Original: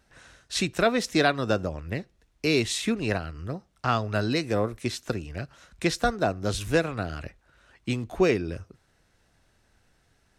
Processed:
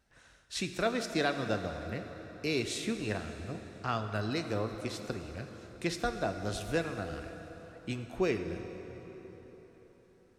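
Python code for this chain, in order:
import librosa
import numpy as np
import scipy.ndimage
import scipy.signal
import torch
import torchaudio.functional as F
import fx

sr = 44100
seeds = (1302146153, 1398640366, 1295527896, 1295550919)

y = fx.rev_plate(x, sr, seeds[0], rt60_s=4.5, hf_ratio=0.7, predelay_ms=0, drr_db=6.5)
y = y * 10.0 ** (-8.5 / 20.0)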